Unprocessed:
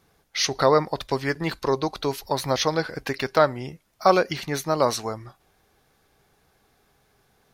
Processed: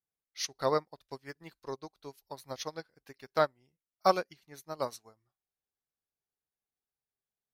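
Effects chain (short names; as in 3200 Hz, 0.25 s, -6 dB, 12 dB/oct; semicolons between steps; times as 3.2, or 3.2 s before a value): high shelf 7500 Hz +11.5 dB; upward expander 2.5:1, over -34 dBFS; gain -6 dB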